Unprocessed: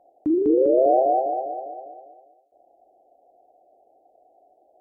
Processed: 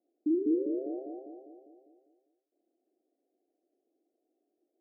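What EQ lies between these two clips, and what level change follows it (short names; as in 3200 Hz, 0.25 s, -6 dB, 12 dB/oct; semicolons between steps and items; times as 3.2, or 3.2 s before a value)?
Butterworth band-pass 290 Hz, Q 2.1; -6.5 dB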